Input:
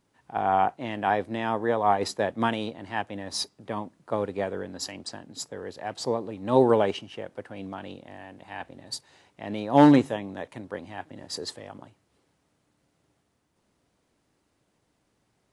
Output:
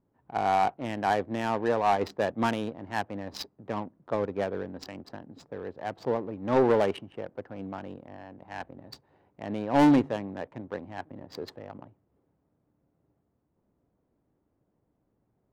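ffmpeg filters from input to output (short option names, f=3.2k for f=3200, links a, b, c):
-af "asoftclip=type=tanh:threshold=-14dB,adynamicsmooth=sensitivity=4:basefreq=860"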